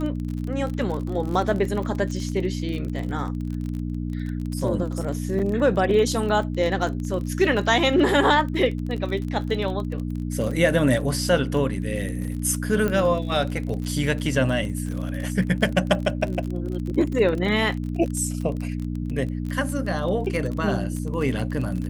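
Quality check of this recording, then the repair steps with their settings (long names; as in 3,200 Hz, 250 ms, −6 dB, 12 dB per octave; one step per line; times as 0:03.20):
surface crackle 32 per second −29 dBFS
mains hum 60 Hz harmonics 5 −28 dBFS
0:05.39: drop-out 4.8 ms
0:12.88: click −13 dBFS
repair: click removal
hum removal 60 Hz, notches 5
repair the gap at 0:05.39, 4.8 ms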